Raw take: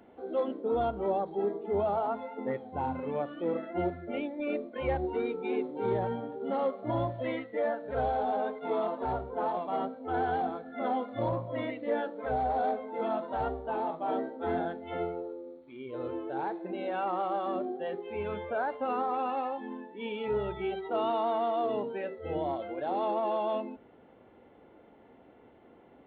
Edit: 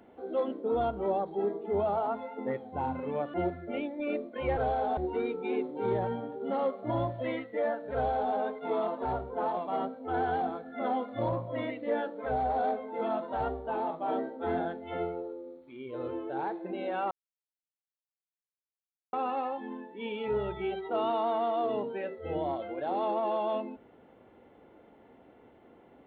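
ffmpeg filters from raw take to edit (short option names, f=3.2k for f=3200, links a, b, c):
-filter_complex "[0:a]asplit=6[a][b][c][d][e][f];[a]atrim=end=3.342[g];[b]atrim=start=3.738:end=4.972[h];[c]atrim=start=7.938:end=8.342[i];[d]atrim=start=4.968:end=17.11,asetpts=PTS-STARTPTS,afade=t=out:st=12.138:d=0.004:c=hsin[j];[e]atrim=start=17.11:end=19.13,asetpts=PTS-STARTPTS,volume=0[k];[f]atrim=start=19.13,asetpts=PTS-STARTPTS,afade=t=in:d=0.004:c=hsin[l];[g][h]acrossfade=d=0.004:c1=hsin:c2=hsin[m];[m][i]acrossfade=d=0.004:c1=hsin:c2=hsin[n];[j][k][l]concat=n=3:v=0:a=1[o];[n][o]acrossfade=d=0.004:c1=hsin:c2=hsin"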